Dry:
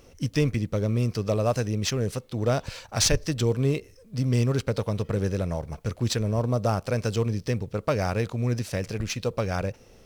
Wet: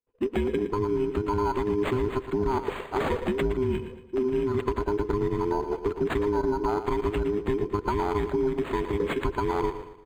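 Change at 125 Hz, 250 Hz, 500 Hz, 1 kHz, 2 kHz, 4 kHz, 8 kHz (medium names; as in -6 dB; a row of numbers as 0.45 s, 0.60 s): -9.0 dB, +0.5 dB, +2.5 dB, +5.0 dB, -1.0 dB, -10.5 dB, under -20 dB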